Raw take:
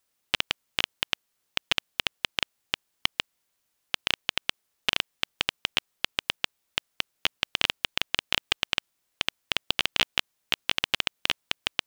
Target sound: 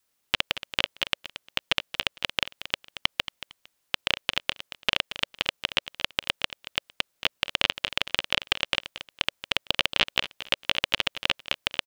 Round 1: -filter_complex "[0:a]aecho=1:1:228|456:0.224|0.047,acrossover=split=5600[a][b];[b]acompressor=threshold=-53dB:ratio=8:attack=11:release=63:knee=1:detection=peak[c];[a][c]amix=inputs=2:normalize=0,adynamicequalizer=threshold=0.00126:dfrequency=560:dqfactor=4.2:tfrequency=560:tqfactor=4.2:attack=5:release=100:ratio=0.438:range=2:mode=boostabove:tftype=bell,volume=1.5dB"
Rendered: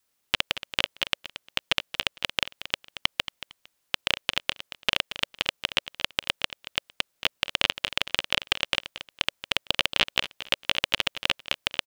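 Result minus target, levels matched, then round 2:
compressor: peak gain reduction -6 dB
-filter_complex "[0:a]aecho=1:1:228|456:0.224|0.047,acrossover=split=5600[a][b];[b]acompressor=threshold=-60dB:ratio=8:attack=11:release=63:knee=1:detection=peak[c];[a][c]amix=inputs=2:normalize=0,adynamicequalizer=threshold=0.00126:dfrequency=560:dqfactor=4.2:tfrequency=560:tqfactor=4.2:attack=5:release=100:ratio=0.438:range=2:mode=boostabove:tftype=bell,volume=1.5dB"

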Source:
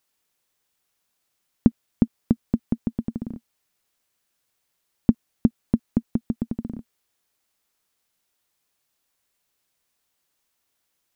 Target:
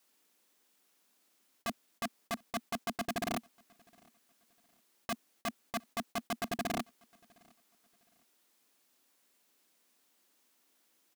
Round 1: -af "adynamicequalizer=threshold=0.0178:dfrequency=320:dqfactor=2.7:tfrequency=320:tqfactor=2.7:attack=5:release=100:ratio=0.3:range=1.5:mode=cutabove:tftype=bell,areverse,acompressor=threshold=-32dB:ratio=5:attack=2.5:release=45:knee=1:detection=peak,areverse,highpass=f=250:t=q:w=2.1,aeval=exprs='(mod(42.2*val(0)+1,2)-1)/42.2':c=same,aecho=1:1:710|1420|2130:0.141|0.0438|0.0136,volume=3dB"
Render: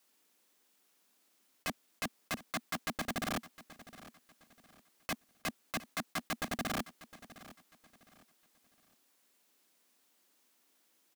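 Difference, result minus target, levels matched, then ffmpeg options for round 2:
echo-to-direct +11.5 dB; compressor: peak gain reduction -6.5 dB
-af "adynamicequalizer=threshold=0.0178:dfrequency=320:dqfactor=2.7:tfrequency=320:tqfactor=2.7:attack=5:release=100:ratio=0.3:range=1.5:mode=cutabove:tftype=bell,areverse,acompressor=threshold=-40dB:ratio=5:attack=2.5:release=45:knee=1:detection=peak,areverse,highpass=f=250:t=q:w=2.1,aeval=exprs='(mod(42.2*val(0)+1,2)-1)/42.2':c=same,aecho=1:1:710|1420:0.0376|0.0117,volume=3dB"

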